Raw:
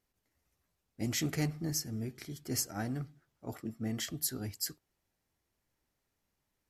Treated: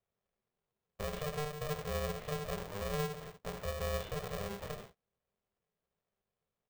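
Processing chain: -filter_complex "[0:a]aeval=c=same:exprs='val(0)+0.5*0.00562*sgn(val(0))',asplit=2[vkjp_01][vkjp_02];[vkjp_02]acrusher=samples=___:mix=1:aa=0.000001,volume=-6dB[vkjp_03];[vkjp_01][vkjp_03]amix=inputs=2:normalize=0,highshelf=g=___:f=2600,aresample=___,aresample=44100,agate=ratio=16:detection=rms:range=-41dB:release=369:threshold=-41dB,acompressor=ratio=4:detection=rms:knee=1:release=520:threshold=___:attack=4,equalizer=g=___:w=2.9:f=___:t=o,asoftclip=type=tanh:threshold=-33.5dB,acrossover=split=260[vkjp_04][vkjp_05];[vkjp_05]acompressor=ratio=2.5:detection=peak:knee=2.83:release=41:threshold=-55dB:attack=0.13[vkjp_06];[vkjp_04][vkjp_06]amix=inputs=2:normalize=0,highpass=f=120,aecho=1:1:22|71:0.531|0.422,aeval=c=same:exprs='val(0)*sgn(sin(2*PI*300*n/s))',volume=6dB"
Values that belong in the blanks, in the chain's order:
19, -7, 8000, -34dB, -8.5, 1200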